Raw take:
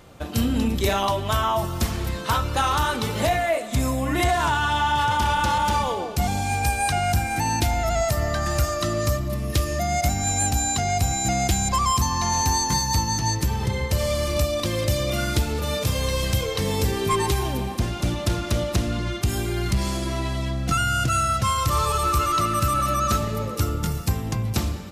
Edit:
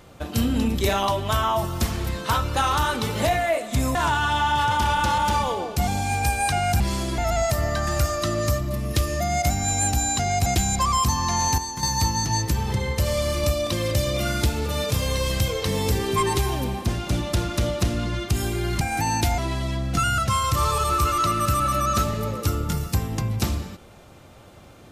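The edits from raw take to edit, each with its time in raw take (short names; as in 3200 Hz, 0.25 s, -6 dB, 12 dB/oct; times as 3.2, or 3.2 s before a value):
3.95–4.35 cut
7.2–7.77 swap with 19.74–20.12
11.05–11.39 cut
12.51–12.76 gain -8.5 dB
20.92–21.32 cut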